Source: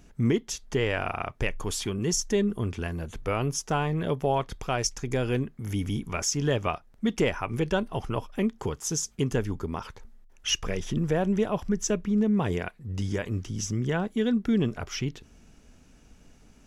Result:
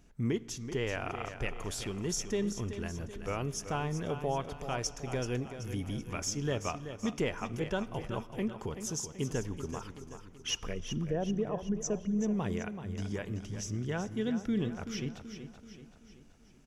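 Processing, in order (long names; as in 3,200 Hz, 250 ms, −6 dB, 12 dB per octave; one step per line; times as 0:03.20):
0:10.73–0:12.19: spectral envelope exaggerated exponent 1.5
repeating echo 381 ms, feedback 49%, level −10 dB
on a send at −19 dB: convolution reverb RT60 2.6 s, pre-delay 33 ms
on the sum: level −7.5 dB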